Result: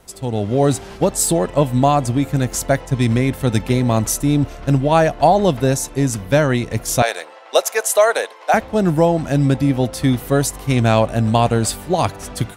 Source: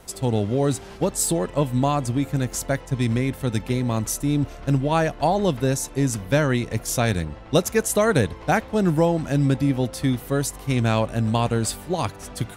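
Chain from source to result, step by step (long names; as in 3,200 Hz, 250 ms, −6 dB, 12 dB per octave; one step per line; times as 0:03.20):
0:07.02–0:08.54: high-pass filter 520 Hz 24 dB per octave
automatic gain control
dynamic equaliser 690 Hz, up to +5 dB, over −29 dBFS, Q 2.7
level −2 dB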